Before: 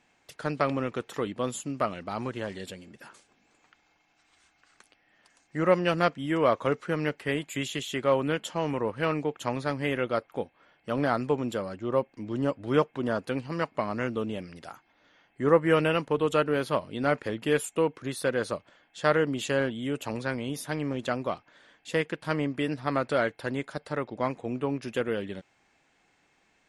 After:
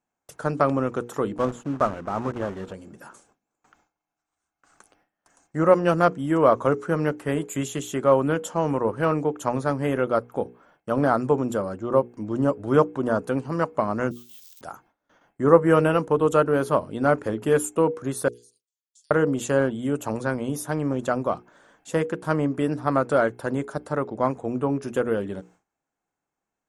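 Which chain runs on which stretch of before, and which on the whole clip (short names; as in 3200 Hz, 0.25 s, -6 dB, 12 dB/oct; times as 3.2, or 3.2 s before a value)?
1.38–2.74 block floating point 3-bit + LPF 2900 Hz
14.11–14.61 switching spikes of -26 dBFS + ladder band-pass 4000 Hz, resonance 55% + careless resampling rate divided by 2×, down none, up zero stuff
18.28–19.11 inverse Chebyshev high-pass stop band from 1400 Hz, stop band 60 dB + compressor 8:1, threshold -57 dBFS
whole clip: notches 60/120/180/240/300/360/420/480 Hz; gate with hold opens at -51 dBFS; band shelf 3000 Hz -11 dB; gain +6 dB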